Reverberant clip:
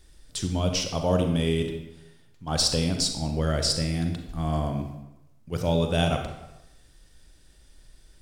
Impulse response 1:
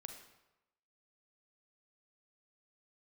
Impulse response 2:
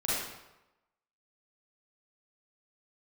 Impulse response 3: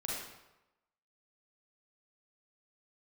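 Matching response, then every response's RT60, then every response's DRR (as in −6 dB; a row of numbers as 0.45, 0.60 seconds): 1; 0.95, 0.95, 0.95 seconds; 4.5, −9.0, −5.0 decibels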